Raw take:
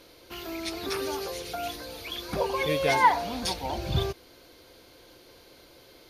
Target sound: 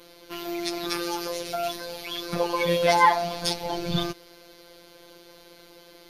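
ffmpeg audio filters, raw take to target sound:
-af "afftfilt=real='hypot(re,im)*cos(PI*b)':imag='0':win_size=1024:overlap=0.75,adynamicequalizer=threshold=0.00282:dfrequency=5100:dqfactor=4.2:tfrequency=5100:tqfactor=4.2:attack=5:release=100:ratio=0.375:range=1.5:mode=boostabove:tftype=bell,volume=6dB"

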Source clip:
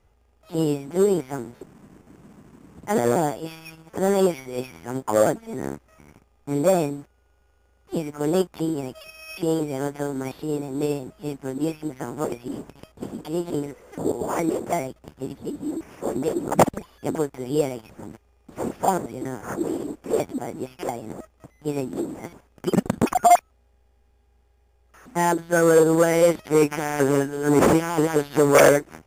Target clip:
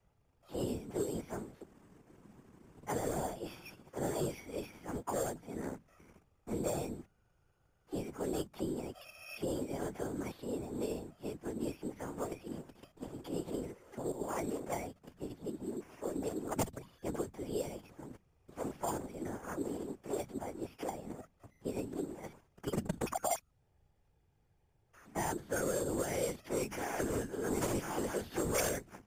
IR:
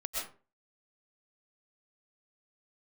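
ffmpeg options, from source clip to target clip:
-filter_complex "[0:a]bandreject=f=50:t=h:w=6,bandreject=f=100:t=h:w=6,bandreject=f=150:t=h:w=6,bandreject=f=200:t=h:w=6,afftfilt=real='hypot(re,im)*cos(2*PI*random(0))':imag='hypot(re,im)*sin(2*PI*random(1))':win_size=512:overlap=0.75,acrossover=split=130|3000[a][b][c];[b]acompressor=threshold=-30dB:ratio=4[d];[a][d][c]amix=inputs=3:normalize=0,volume=-4dB"

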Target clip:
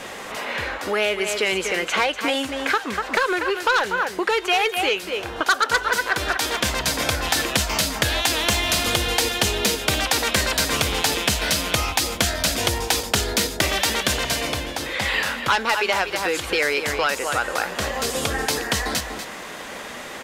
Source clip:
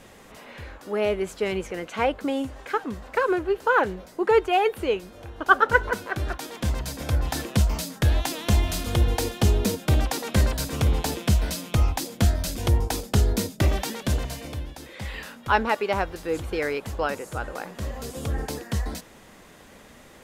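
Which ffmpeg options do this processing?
-filter_complex "[0:a]aecho=1:1:241:0.266,asplit=2[a][b];[b]highpass=f=720:p=1,volume=18dB,asoftclip=type=tanh:threshold=-2.5dB[c];[a][c]amix=inputs=2:normalize=0,lowpass=f=5.4k:p=1,volume=-6dB,acrossover=split=1600|3400|7100[d][e][f][g];[d]acompressor=threshold=-30dB:ratio=4[h];[e]acompressor=threshold=-30dB:ratio=4[i];[f]acompressor=threshold=-32dB:ratio=4[j];[g]acompressor=threshold=-32dB:ratio=4[k];[h][i][j][k]amix=inputs=4:normalize=0,volume=5.5dB"

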